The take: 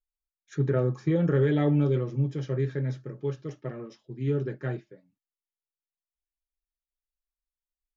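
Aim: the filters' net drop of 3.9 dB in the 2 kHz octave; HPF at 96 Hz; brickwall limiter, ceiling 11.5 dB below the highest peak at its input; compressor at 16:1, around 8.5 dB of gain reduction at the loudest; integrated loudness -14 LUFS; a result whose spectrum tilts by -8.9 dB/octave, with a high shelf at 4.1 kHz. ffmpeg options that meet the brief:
-af "highpass=96,equalizer=f=2000:t=o:g=-6.5,highshelf=f=4100:g=8,acompressor=threshold=0.0398:ratio=16,volume=20,alimiter=limit=0.562:level=0:latency=1"

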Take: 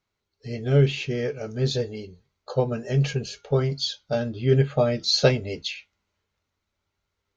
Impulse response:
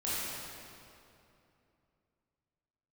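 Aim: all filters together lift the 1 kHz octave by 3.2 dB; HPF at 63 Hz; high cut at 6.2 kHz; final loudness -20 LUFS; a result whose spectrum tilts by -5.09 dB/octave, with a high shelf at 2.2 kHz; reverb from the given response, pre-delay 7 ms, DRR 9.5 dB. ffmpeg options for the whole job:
-filter_complex "[0:a]highpass=63,lowpass=6200,equalizer=f=1000:t=o:g=3,highshelf=f=2200:g=7.5,asplit=2[s0][s1];[1:a]atrim=start_sample=2205,adelay=7[s2];[s1][s2]afir=irnorm=-1:irlink=0,volume=0.158[s3];[s0][s3]amix=inputs=2:normalize=0,volume=1.26"

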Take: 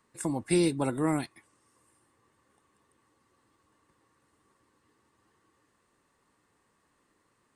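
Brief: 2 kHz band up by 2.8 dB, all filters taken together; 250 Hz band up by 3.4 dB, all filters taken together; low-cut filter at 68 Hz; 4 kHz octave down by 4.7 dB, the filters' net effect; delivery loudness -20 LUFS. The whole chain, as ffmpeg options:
-af "highpass=68,equalizer=f=250:t=o:g=5,equalizer=f=2000:t=o:g=5.5,equalizer=f=4000:t=o:g=-7.5,volume=2.11"

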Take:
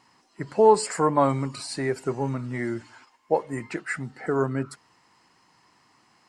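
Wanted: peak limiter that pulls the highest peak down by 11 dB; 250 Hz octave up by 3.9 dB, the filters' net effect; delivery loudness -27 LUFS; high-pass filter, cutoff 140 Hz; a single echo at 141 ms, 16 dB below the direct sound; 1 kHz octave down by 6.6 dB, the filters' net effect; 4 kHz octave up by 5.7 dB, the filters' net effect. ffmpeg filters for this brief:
-af "highpass=140,equalizer=f=250:t=o:g=5.5,equalizer=f=1000:t=o:g=-8.5,equalizer=f=4000:t=o:g=7,alimiter=limit=0.126:level=0:latency=1,aecho=1:1:141:0.158,volume=1.26"

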